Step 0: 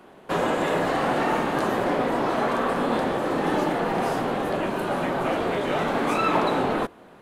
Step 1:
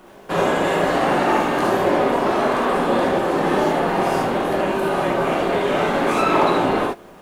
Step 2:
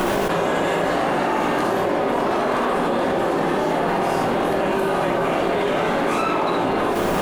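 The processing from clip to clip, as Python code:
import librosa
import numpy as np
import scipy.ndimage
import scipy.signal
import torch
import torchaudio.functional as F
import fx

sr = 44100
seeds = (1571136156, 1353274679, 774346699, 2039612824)

y1 = fx.dmg_noise_colour(x, sr, seeds[0], colour='pink', level_db=-62.0)
y1 = fx.rev_gated(y1, sr, seeds[1], gate_ms=90, shape='rising', drr_db=-1.5)
y1 = y1 * librosa.db_to_amplitude(1.5)
y2 = fx.env_flatten(y1, sr, amount_pct=100)
y2 = y2 * librosa.db_to_amplitude(-6.0)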